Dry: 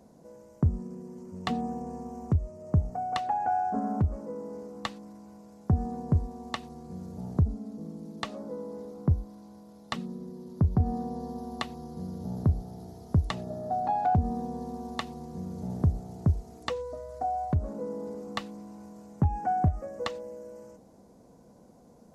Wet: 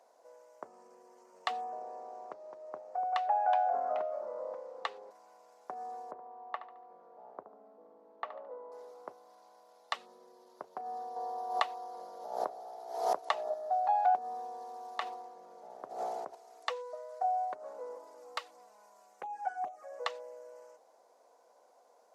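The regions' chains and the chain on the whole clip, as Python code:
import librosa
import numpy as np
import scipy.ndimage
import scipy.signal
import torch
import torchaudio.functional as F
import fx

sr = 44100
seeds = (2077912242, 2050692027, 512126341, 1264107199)

y = fx.chain(x, sr, fx.lowpass(hz=3000.0, slope=6),
    fx.echo_pitch(ms=84, semitones=-3, count=2, db_per_echo=-6.0), at=(1.64, 5.11))
y = fx.chain(y, sr, fx.lowpass(hz=1300.0, slope=12),
    fx.echo_feedback(ms=72, feedback_pct=36, wet_db=-12.5), at=(6.11, 8.72))
y = fx.chain(y, sr, fx.peak_eq(hz=710.0, db=7.5, octaves=2.0),
    fx.pre_swell(db_per_s=72.0), at=(11.16, 13.54))
y = fx.chain(y, sr, fx.high_shelf(hz=2700.0, db=-9.0),
    fx.sustainer(db_per_s=28.0), at=(14.98, 16.35))
y = fx.chain(y, sr, fx.high_shelf(hz=6300.0, db=7.0),
    fx.env_flanger(rest_ms=6.4, full_db=-21.0), at=(17.95, 19.92))
y = scipy.signal.sosfilt(scipy.signal.butter(4, 590.0, 'highpass', fs=sr, output='sos'), y)
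y = fx.high_shelf(y, sr, hz=5700.0, db=-8.5)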